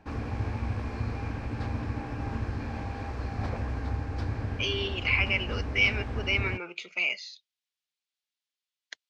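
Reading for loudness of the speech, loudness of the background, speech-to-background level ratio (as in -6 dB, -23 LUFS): -28.0 LUFS, -34.5 LUFS, 6.5 dB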